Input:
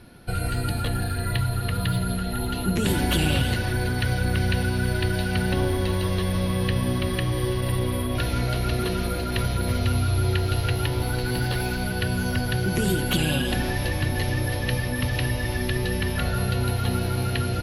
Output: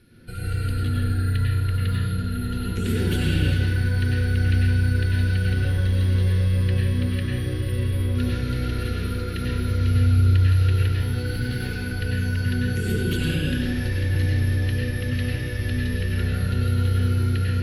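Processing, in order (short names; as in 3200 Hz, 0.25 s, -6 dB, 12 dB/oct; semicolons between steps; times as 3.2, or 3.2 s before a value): band shelf 820 Hz -13.5 dB 1.1 oct; reverb RT60 1.2 s, pre-delay 87 ms, DRR -5 dB; gain -8 dB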